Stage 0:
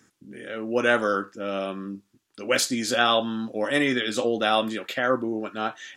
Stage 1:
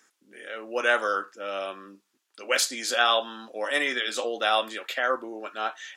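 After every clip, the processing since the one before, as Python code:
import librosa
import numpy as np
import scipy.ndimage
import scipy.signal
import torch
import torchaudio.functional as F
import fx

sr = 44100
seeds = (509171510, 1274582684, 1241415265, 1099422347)

y = scipy.signal.sosfilt(scipy.signal.butter(2, 580.0, 'highpass', fs=sr, output='sos'), x)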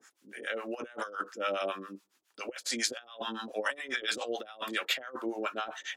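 y = fx.over_compress(x, sr, threshold_db=-32.0, ratio=-0.5)
y = fx.harmonic_tremolo(y, sr, hz=7.2, depth_pct=100, crossover_hz=640.0)
y = y * librosa.db_to_amplitude(2.0)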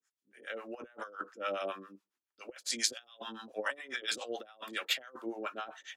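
y = fx.band_widen(x, sr, depth_pct=70)
y = y * librosa.db_to_amplitude(-5.0)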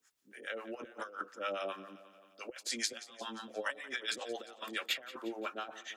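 y = fx.echo_feedback(x, sr, ms=176, feedback_pct=50, wet_db=-18)
y = fx.band_squash(y, sr, depth_pct=40)
y = y * librosa.db_to_amplitude(-1.0)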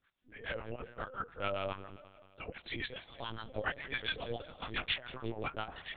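y = fx.lpc_vocoder(x, sr, seeds[0], excitation='pitch_kept', order=10)
y = y * librosa.db_to_amplitude(1.5)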